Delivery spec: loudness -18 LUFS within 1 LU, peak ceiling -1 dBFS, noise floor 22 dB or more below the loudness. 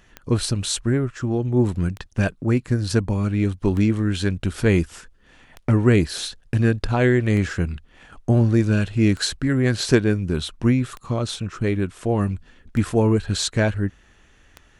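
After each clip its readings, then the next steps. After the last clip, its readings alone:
clicks 9; loudness -21.5 LUFS; peak -1.0 dBFS; loudness target -18.0 LUFS
-> de-click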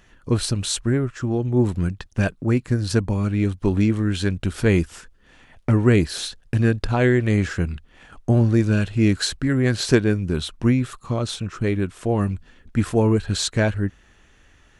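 clicks 0; loudness -21.5 LUFS; peak -1.0 dBFS; loudness target -18.0 LUFS
-> gain +3.5 dB; limiter -1 dBFS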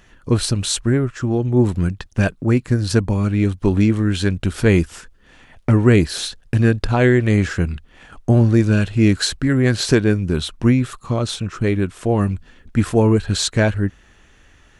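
loudness -18.0 LUFS; peak -1.0 dBFS; noise floor -51 dBFS

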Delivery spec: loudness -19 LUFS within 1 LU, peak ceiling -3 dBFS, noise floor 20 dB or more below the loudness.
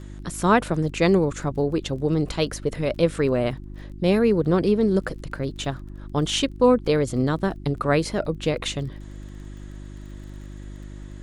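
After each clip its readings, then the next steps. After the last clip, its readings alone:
ticks 26/s; hum 50 Hz; harmonics up to 350 Hz; hum level -35 dBFS; loudness -23.0 LUFS; peak -6.5 dBFS; loudness target -19.0 LUFS
-> de-click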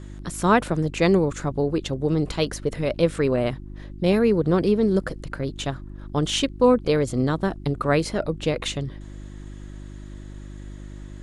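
ticks 0.089/s; hum 50 Hz; harmonics up to 350 Hz; hum level -35 dBFS
-> de-hum 50 Hz, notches 7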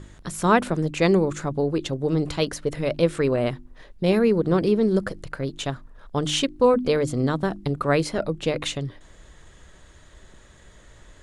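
hum none; loudness -23.5 LUFS; peak -6.5 dBFS; loudness target -19.0 LUFS
-> gain +4.5 dB; limiter -3 dBFS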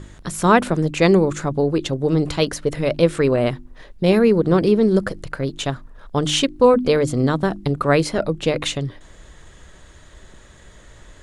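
loudness -19.0 LUFS; peak -3.0 dBFS; noise floor -46 dBFS

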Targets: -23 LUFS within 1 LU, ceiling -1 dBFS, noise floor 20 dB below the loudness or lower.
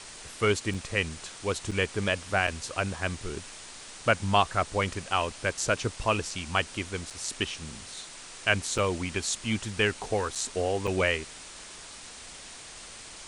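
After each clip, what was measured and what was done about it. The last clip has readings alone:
dropouts 7; longest dropout 5.5 ms; noise floor -45 dBFS; noise floor target -49 dBFS; loudness -29.0 LUFS; peak -8.0 dBFS; loudness target -23.0 LUFS
-> interpolate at 0.74/1.71/2.47/7.1/8.78/10.35/10.87, 5.5 ms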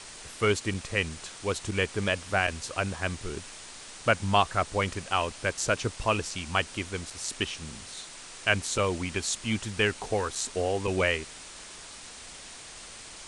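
dropouts 0; noise floor -45 dBFS; noise floor target -49 dBFS
-> denoiser 6 dB, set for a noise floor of -45 dBFS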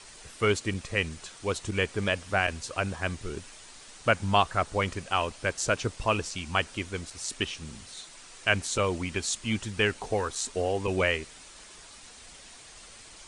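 noise floor -50 dBFS; loudness -29.0 LUFS; peak -8.0 dBFS; loudness target -23.0 LUFS
-> gain +6 dB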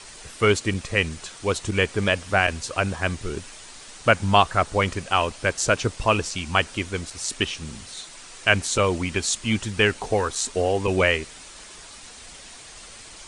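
loudness -23.0 LUFS; peak -2.0 dBFS; noise floor -44 dBFS

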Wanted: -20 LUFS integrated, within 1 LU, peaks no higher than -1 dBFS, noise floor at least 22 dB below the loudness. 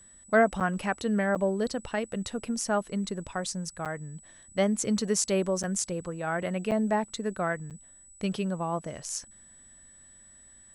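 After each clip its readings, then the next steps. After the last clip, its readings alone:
dropouts 6; longest dropout 7.7 ms; steady tone 7900 Hz; tone level -52 dBFS; loudness -29.5 LUFS; peak -11.0 dBFS; loudness target -20.0 LUFS
-> interpolate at 0.6/1.35/3.85/5.63/6.71/7.7, 7.7 ms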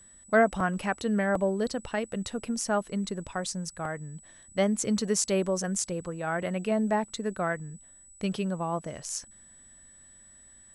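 dropouts 0; steady tone 7900 Hz; tone level -52 dBFS
-> notch 7900 Hz, Q 30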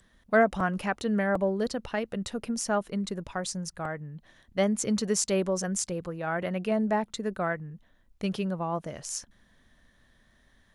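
steady tone none; loudness -29.5 LUFS; peak -11.0 dBFS; loudness target -20.0 LUFS
-> gain +9.5 dB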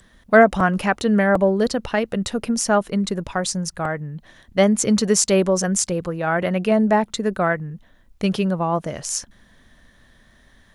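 loudness -20.0 LUFS; peak -1.5 dBFS; noise floor -55 dBFS

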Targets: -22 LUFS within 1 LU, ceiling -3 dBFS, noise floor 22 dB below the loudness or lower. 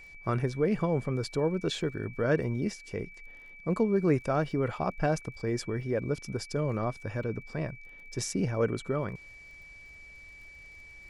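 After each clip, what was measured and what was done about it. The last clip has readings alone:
ticks 33/s; steady tone 2300 Hz; tone level -48 dBFS; loudness -31.0 LUFS; peak -14.0 dBFS; loudness target -22.0 LUFS
-> de-click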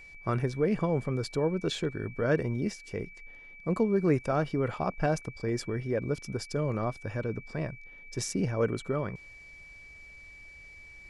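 ticks 0/s; steady tone 2300 Hz; tone level -48 dBFS
-> notch 2300 Hz, Q 30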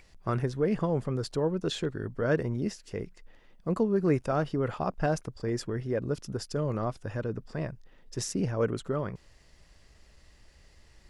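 steady tone none; loudness -31.0 LUFS; peak -14.0 dBFS; loudness target -22.0 LUFS
-> gain +9 dB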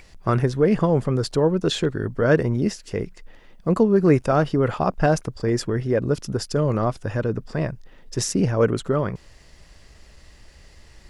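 loudness -22.0 LUFS; peak -5.0 dBFS; noise floor -50 dBFS

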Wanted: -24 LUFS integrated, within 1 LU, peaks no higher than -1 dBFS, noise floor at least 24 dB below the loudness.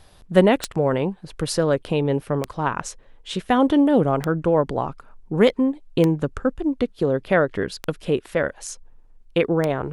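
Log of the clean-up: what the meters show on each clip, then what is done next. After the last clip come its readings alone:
clicks 6; loudness -22.0 LUFS; peak -1.0 dBFS; loudness target -24.0 LUFS
-> de-click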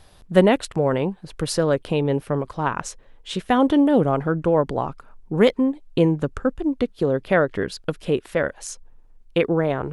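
clicks 0; loudness -22.0 LUFS; peak -1.0 dBFS; loudness target -24.0 LUFS
-> gain -2 dB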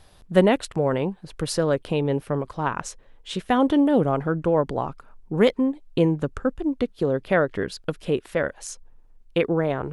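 loudness -24.0 LUFS; peak -3.0 dBFS; noise floor -53 dBFS

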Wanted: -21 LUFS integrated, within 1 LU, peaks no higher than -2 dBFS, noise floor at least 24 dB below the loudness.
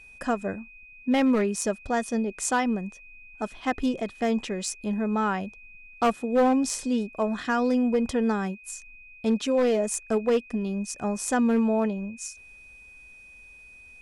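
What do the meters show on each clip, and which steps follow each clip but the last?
clipped 0.8%; flat tops at -16.5 dBFS; steady tone 2500 Hz; tone level -47 dBFS; loudness -26.5 LUFS; peak -16.5 dBFS; loudness target -21.0 LUFS
-> clip repair -16.5 dBFS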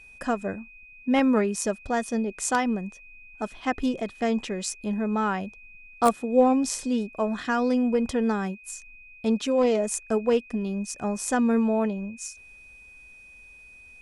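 clipped 0.0%; steady tone 2500 Hz; tone level -47 dBFS
-> notch 2500 Hz, Q 30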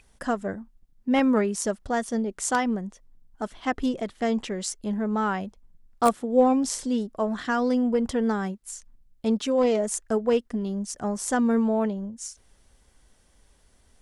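steady tone none; loudness -26.0 LUFS; peak -7.5 dBFS; loudness target -21.0 LUFS
-> gain +5 dB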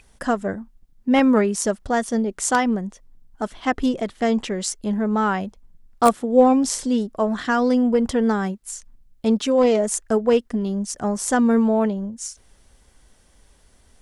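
loudness -21.0 LUFS; peak -2.5 dBFS; noise floor -56 dBFS

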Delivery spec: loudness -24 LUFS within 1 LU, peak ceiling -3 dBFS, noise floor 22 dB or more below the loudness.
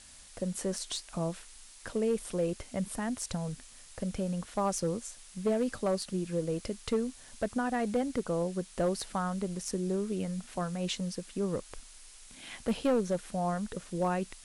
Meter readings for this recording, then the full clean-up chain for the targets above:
clipped 0.6%; flat tops at -22.5 dBFS; noise floor -53 dBFS; noise floor target -56 dBFS; loudness -33.5 LUFS; peak -22.5 dBFS; loudness target -24.0 LUFS
-> clip repair -22.5 dBFS; noise print and reduce 6 dB; gain +9.5 dB

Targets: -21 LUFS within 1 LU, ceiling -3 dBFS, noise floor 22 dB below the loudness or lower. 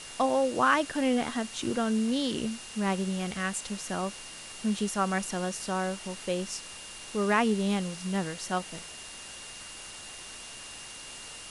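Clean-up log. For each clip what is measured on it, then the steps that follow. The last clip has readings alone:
steady tone 2800 Hz; tone level -48 dBFS; noise floor -44 dBFS; noise floor target -52 dBFS; loudness -30.0 LUFS; peak -10.0 dBFS; loudness target -21.0 LUFS
-> notch 2800 Hz, Q 30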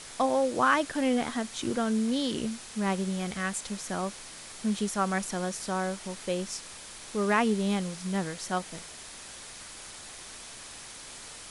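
steady tone none; noise floor -45 dBFS; noise floor target -52 dBFS
-> noise print and reduce 7 dB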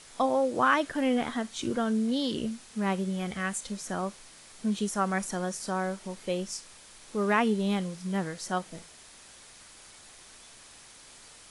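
noise floor -52 dBFS; loudness -30.0 LUFS; peak -10.5 dBFS; loudness target -21.0 LUFS
-> gain +9 dB; limiter -3 dBFS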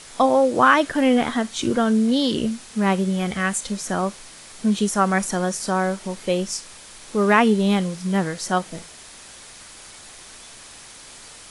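loudness -21.0 LUFS; peak -3.0 dBFS; noise floor -43 dBFS

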